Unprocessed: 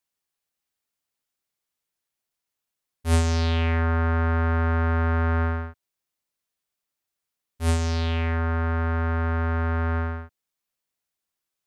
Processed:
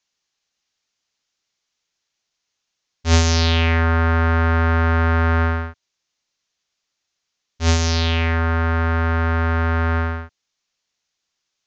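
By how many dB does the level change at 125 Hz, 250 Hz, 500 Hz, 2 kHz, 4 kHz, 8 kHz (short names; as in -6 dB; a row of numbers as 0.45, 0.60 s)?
+5.0, +5.0, +5.5, +8.5, +12.0, +10.0 dB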